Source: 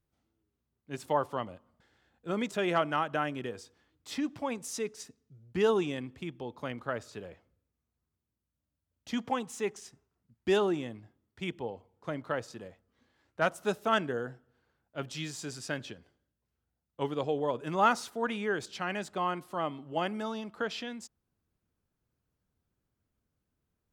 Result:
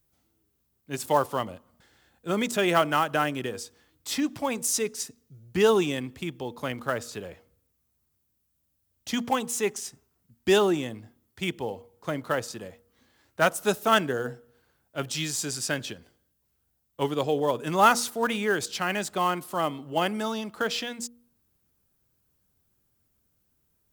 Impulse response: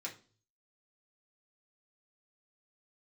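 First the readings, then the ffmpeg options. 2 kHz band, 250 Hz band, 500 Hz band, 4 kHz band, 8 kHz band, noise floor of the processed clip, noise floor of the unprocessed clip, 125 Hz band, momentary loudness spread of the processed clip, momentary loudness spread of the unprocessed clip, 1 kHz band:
+7.0 dB, +5.5 dB, +5.5 dB, +9.0 dB, +13.5 dB, −74 dBFS, −85 dBFS, +5.5 dB, 16 LU, 18 LU, +6.0 dB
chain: -filter_complex "[0:a]aemphasis=mode=production:type=50kf,bandreject=frequency=237.8:width_type=h:width=4,bandreject=frequency=475.6:width_type=h:width=4,acrossover=split=730|4400[link_01][link_02][link_03];[link_02]acrusher=bits=4:mode=log:mix=0:aa=0.000001[link_04];[link_01][link_04][link_03]amix=inputs=3:normalize=0,volume=5.5dB"

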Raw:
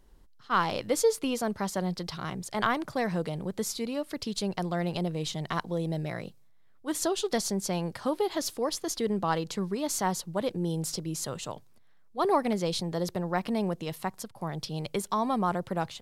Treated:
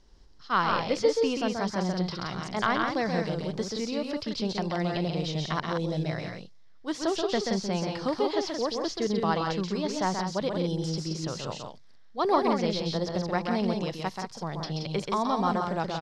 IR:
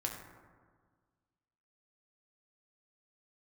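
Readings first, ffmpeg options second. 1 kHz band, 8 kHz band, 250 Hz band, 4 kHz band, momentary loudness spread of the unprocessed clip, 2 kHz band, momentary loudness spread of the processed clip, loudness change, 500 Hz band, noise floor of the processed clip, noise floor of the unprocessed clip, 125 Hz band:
+2.0 dB, −6.5 dB, +2.0 dB, +2.5 dB, 8 LU, +2.5 dB, 8 LU, +1.5 dB, +2.0 dB, −49 dBFS, −55 dBFS, +2.0 dB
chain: -filter_complex "[0:a]lowpass=frequency=5300:width_type=q:width=3.5,aecho=1:1:131.2|174.9:0.562|0.501,acrossover=split=3300[link_01][link_02];[link_02]acompressor=threshold=-43dB:ratio=4:attack=1:release=60[link_03];[link_01][link_03]amix=inputs=2:normalize=0"

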